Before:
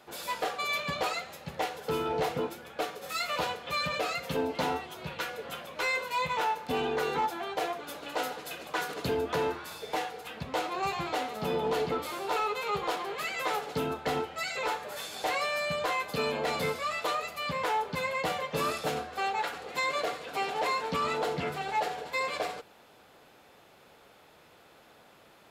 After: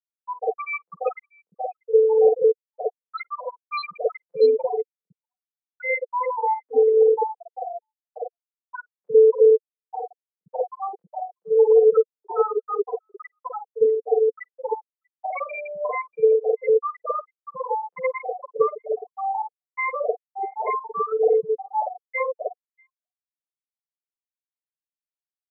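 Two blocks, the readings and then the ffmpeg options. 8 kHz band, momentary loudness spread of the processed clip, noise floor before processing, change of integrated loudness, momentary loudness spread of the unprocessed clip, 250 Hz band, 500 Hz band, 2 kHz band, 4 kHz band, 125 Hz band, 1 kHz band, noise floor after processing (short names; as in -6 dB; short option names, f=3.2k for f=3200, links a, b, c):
under -35 dB, 18 LU, -58 dBFS, +9.5 dB, 7 LU, n/a, +13.5 dB, -1.5 dB, under -10 dB, under -15 dB, +3.0 dB, under -85 dBFS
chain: -filter_complex "[0:a]afftfilt=real='re*gte(hypot(re,im),0.2)':imag='im*gte(hypot(re,im),0.2)':win_size=1024:overlap=0.75,highpass=f=460:t=q:w=4.9,acrossover=split=700|4800[a][b][c];[a]adelay=50[d];[c]adelay=640[e];[d][b][e]amix=inputs=3:normalize=0,volume=6.5dB"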